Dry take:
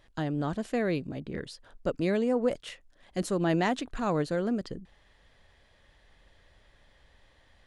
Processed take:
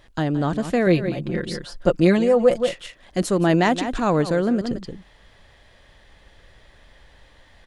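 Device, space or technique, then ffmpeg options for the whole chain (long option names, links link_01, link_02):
ducked delay: -filter_complex "[0:a]asettb=1/sr,asplit=3[link_01][link_02][link_03];[link_01]atrim=end=0.864[link_04];[link_02]atrim=start=0.86:end=2.69,asetpts=PTS-STARTPTS,afade=type=in:duration=0.004:curve=qsin,afade=type=out:start_time=1.826:duration=0.004:curve=qsin,aecho=1:1:5.7:0.75,atrim=end_sample=80703[link_05];[link_03]atrim=start=2.686[link_06];[link_04][link_05]acrossfade=duration=0.004:curve1=hsin:curve2=qsin[link_07];[link_07][link_06]acrossfade=duration=0.004:curve1=qsin:curve2=hsin,asplit=3[link_08][link_09][link_10];[link_09]adelay=173,volume=-5dB[link_11];[link_10]apad=whole_len=345813[link_12];[link_11][link_12]sidechaincompress=threshold=-37dB:ratio=8:attack=9.9:release=109[link_13];[link_08][link_13]amix=inputs=2:normalize=0,volume=8.5dB"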